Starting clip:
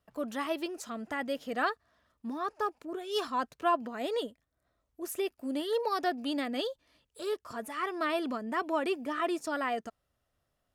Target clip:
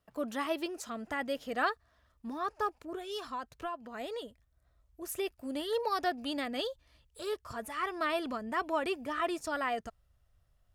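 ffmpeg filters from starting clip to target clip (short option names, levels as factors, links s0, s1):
-filter_complex "[0:a]asettb=1/sr,asplit=3[s0][s1][s2];[s0]atrim=end=3.104[s3];[s1]atrim=start=3.1:end=5.09,asetpts=PTS-STARTPTS,afade=t=in:d=0.004:c=qsin,afade=t=out:st=1.986:d=0.004:c=qsin,acompressor=threshold=0.0178:ratio=6[s4];[s2]atrim=start=5.086[s5];[s3][s4]acrossfade=d=0.004:c1=hsin:c2=qsin[s6];[s6][s5]acrossfade=d=0.004:c1=qsin:c2=hsin,asubboost=boost=7.5:cutoff=91"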